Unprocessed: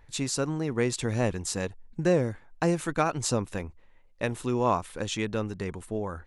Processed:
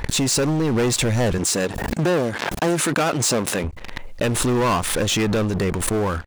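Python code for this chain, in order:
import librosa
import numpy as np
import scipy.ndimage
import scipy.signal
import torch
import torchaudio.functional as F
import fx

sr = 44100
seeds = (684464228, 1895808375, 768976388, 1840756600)

y = fx.leveller(x, sr, passes=5)
y = fx.highpass(y, sr, hz=180.0, slope=12, at=(1.38, 3.64))
y = fx.pre_swell(y, sr, db_per_s=33.0)
y = y * 10.0 ** (-4.0 / 20.0)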